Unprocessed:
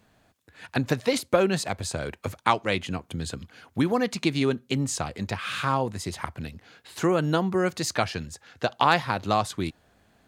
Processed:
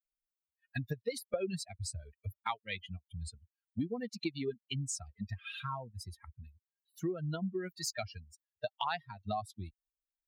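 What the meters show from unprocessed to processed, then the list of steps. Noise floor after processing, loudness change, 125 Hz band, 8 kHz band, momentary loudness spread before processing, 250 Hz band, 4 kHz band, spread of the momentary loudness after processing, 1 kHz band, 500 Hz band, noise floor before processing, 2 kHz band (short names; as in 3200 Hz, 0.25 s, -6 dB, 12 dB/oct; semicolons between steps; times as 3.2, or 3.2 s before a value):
under -85 dBFS, -13.0 dB, -10.5 dB, -9.0 dB, 12 LU, -13.5 dB, -11.5 dB, 11 LU, -15.0 dB, -14.0 dB, -64 dBFS, -15.0 dB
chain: per-bin expansion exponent 3; dynamic EQ 1300 Hz, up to -5 dB, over -42 dBFS, Q 1.4; compressor 2.5:1, threshold -39 dBFS, peak gain reduction 13 dB; gain +2.5 dB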